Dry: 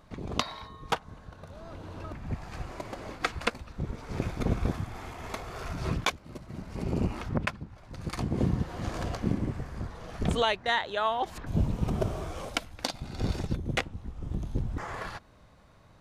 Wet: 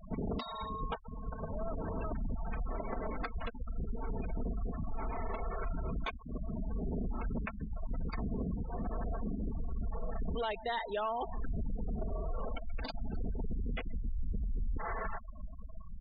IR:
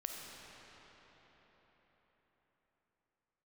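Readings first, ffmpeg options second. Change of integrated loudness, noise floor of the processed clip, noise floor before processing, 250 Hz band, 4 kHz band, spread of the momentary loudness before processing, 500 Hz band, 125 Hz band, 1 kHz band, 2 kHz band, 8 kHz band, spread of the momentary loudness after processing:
−6.5 dB, −46 dBFS, −56 dBFS, −6.5 dB, −14.0 dB, 13 LU, −5.5 dB, −7.5 dB, −6.0 dB, −11.0 dB, below −35 dB, 6 LU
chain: -filter_complex "[0:a]lowpass=frequency=3600:poles=1,aecho=1:1:4.5:0.55,asplit=2[link_01][link_02];[link_02]adelay=130,highpass=300,lowpass=3400,asoftclip=type=hard:threshold=-18.5dB,volume=-23dB[link_03];[link_01][link_03]amix=inputs=2:normalize=0,acompressor=threshold=-42dB:ratio=3,aresample=16000,asoftclip=type=tanh:threshold=-36.5dB,aresample=44100,asubboost=boost=3.5:cutoff=56,alimiter=level_in=13.5dB:limit=-24dB:level=0:latency=1:release=37,volume=-13.5dB,afftfilt=real='re*gte(hypot(re,im),0.00562)':imag='im*gte(hypot(re,im),0.00562)':win_size=1024:overlap=0.75,volume=9dB"

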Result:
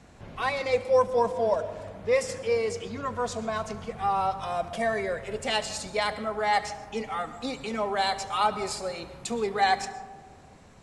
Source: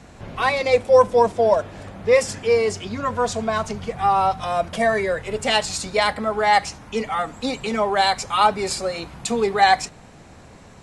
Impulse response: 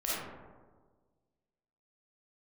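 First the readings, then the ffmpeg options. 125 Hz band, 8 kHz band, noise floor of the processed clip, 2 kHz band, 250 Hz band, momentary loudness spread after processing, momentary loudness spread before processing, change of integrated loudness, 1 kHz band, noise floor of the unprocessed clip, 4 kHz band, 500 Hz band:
−8.0 dB, −8.0 dB, −52 dBFS, −8.0 dB, −7.5 dB, 10 LU, 10 LU, −8.0 dB, −7.5 dB, −45 dBFS, −8.0 dB, −7.5 dB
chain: -filter_complex "[0:a]asplit=2[link_01][link_02];[1:a]atrim=start_sample=2205,asetrate=43659,aresample=44100,adelay=71[link_03];[link_02][link_03]afir=irnorm=-1:irlink=0,volume=-19.5dB[link_04];[link_01][link_04]amix=inputs=2:normalize=0,volume=-8dB"

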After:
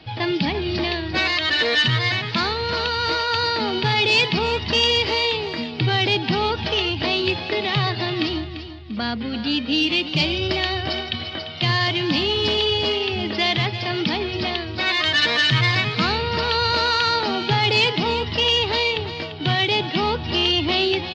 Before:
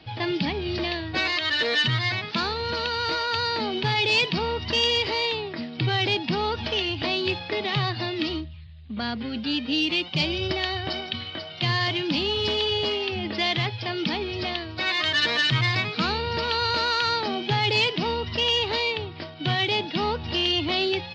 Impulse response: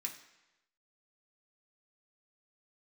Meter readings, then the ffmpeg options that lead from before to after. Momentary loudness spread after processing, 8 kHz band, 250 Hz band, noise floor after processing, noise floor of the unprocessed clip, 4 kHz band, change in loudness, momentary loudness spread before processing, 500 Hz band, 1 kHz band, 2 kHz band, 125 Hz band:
8 LU, +4.5 dB, +4.5 dB, −31 dBFS, −38 dBFS, +4.5 dB, +4.5 dB, 8 LU, +4.5 dB, +4.5 dB, +4.5 dB, +4.5 dB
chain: -af "aecho=1:1:344|688|1032:0.251|0.0804|0.0257,volume=4dB"

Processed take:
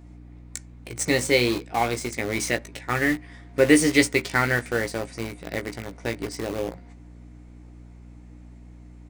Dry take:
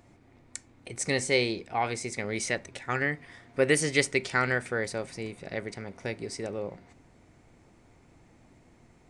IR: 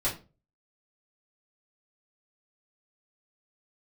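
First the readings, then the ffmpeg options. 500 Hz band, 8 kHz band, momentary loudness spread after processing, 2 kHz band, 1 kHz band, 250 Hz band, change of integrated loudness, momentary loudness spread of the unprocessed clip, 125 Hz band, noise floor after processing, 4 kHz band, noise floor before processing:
+5.0 dB, +4.5 dB, 16 LU, +4.5 dB, +4.5 dB, +10.0 dB, +5.5 dB, 15 LU, +5.0 dB, −46 dBFS, +5.0 dB, −60 dBFS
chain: -filter_complex "[0:a]equalizer=frequency=300:width_type=o:width=0.2:gain=9,aeval=exprs='val(0)+0.00447*(sin(2*PI*60*n/s)+sin(2*PI*2*60*n/s)/2+sin(2*PI*3*60*n/s)/3+sin(2*PI*4*60*n/s)/4+sin(2*PI*5*60*n/s)/5)':channel_layout=same,asplit=2[link_01][link_02];[link_02]acrusher=bits=4:mix=0:aa=0.000001,volume=-5dB[link_03];[link_01][link_03]amix=inputs=2:normalize=0,asplit=2[link_04][link_05];[link_05]adelay=17,volume=-7dB[link_06];[link_04][link_06]amix=inputs=2:normalize=0"

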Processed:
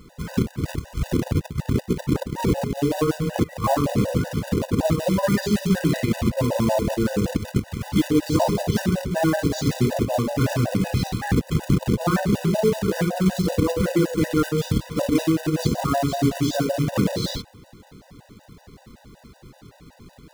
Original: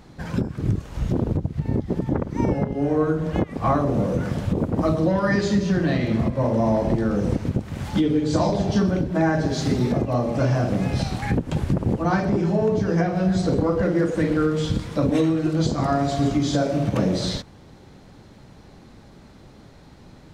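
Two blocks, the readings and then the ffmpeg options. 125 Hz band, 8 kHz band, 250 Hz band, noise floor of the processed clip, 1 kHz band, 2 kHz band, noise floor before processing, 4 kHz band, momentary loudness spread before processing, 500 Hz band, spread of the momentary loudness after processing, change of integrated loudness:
−0.5 dB, +5.5 dB, −0.5 dB, −53 dBFS, −0.5 dB, 0.0 dB, −47 dBFS, +2.5 dB, 5 LU, −0.5 dB, 5 LU, −0.5 dB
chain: -af "acrusher=bits=3:mode=log:mix=0:aa=0.000001,afftfilt=real='re*gt(sin(2*PI*5.3*pts/sr)*(1-2*mod(floor(b*sr/1024/500),2)),0)':imag='im*gt(sin(2*PI*5.3*pts/sr)*(1-2*mod(floor(b*sr/1024/500),2)),0)':win_size=1024:overlap=0.75,volume=2.5dB"

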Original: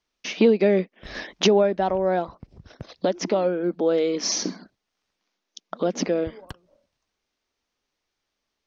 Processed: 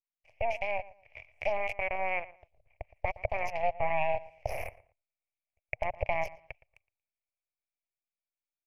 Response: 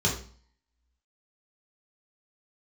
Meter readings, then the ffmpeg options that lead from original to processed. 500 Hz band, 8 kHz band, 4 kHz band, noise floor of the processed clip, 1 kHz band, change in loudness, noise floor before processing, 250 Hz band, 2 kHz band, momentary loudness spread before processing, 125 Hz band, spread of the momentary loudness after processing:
−13.0 dB, can't be measured, −21.0 dB, below −85 dBFS, −3.0 dB, −11.0 dB, −81 dBFS, −29.0 dB, −0.5 dB, 15 LU, −11.0 dB, 20 LU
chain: -filter_complex "[0:a]acompressor=threshold=-29dB:ratio=2,equalizer=frequency=5300:width_type=o:width=0.77:gain=3,acrossover=split=2500[link_01][link_02];[link_02]adelay=260[link_03];[link_01][link_03]amix=inputs=2:normalize=0,alimiter=limit=-22dB:level=0:latency=1:release=57,aeval=exprs='abs(val(0))':channel_layout=same,aeval=exprs='0.0794*(cos(1*acos(clip(val(0)/0.0794,-1,1)))-cos(1*PI/2))+0.0282*(cos(3*acos(clip(val(0)/0.0794,-1,1)))-cos(3*PI/2))+0.000708*(cos(8*acos(clip(val(0)/0.0794,-1,1)))-cos(8*PI/2))':channel_layout=same,firequalizer=gain_entry='entry(110,0);entry(180,-22);entry(260,-24);entry(620,7);entry(1000,-10);entry(1400,-23);entry(2300,13);entry(3700,-24);entry(5200,-16);entry(7800,-22)':delay=0.05:min_phase=1,asplit=2[link_04][link_05];[link_05]adelay=116,lowpass=frequency=2000:poles=1,volume=-18dB,asplit=2[link_06][link_07];[link_07]adelay=116,lowpass=frequency=2000:poles=1,volume=0.26[link_08];[link_06][link_08]amix=inputs=2:normalize=0[link_09];[link_04][link_09]amix=inputs=2:normalize=0,dynaudnorm=framelen=230:gausssize=13:maxgain=5dB"

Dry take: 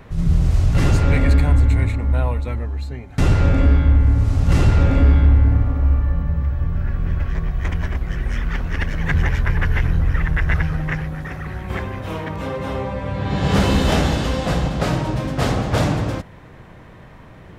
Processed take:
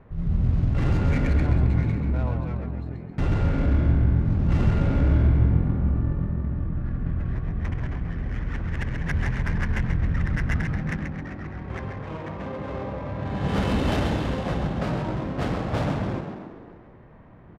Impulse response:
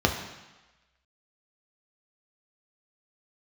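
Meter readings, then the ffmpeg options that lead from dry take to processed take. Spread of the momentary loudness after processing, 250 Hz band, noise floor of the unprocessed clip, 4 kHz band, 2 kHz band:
12 LU, −4.0 dB, −42 dBFS, −10.5 dB, −7.5 dB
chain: -filter_complex "[0:a]asplit=9[link_01][link_02][link_03][link_04][link_05][link_06][link_07][link_08][link_09];[link_02]adelay=133,afreqshift=43,volume=-5.5dB[link_10];[link_03]adelay=266,afreqshift=86,volume=-10.1dB[link_11];[link_04]adelay=399,afreqshift=129,volume=-14.7dB[link_12];[link_05]adelay=532,afreqshift=172,volume=-19.2dB[link_13];[link_06]adelay=665,afreqshift=215,volume=-23.8dB[link_14];[link_07]adelay=798,afreqshift=258,volume=-28.4dB[link_15];[link_08]adelay=931,afreqshift=301,volume=-33dB[link_16];[link_09]adelay=1064,afreqshift=344,volume=-37.6dB[link_17];[link_01][link_10][link_11][link_12][link_13][link_14][link_15][link_16][link_17]amix=inputs=9:normalize=0,adynamicsmooth=sensitivity=2:basefreq=1600,volume=-8dB"

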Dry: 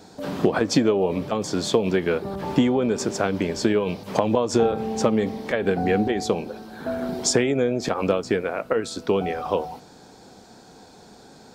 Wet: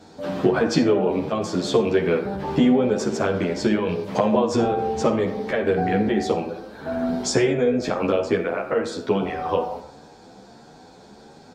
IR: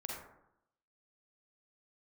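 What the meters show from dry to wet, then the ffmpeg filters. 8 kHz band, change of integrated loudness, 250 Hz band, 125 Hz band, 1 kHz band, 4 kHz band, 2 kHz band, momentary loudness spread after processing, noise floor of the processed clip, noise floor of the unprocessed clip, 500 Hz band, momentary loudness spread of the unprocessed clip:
−4.0 dB, +1.0 dB, +1.5 dB, +1.0 dB, +2.0 dB, −1.5 dB, +0.5 dB, 6 LU, −47 dBFS, −49 dBFS, +1.5 dB, 7 LU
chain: -filter_complex "[0:a]highshelf=frequency=8300:gain=-12,asplit=2[link_01][link_02];[1:a]atrim=start_sample=2205[link_03];[link_02][link_03]afir=irnorm=-1:irlink=0,volume=-1.5dB[link_04];[link_01][link_04]amix=inputs=2:normalize=0,asplit=2[link_05][link_06];[link_06]adelay=10.7,afreqshift=1.6[link_07];[link_05][link_07]amix=inputs=2:normalize=1"

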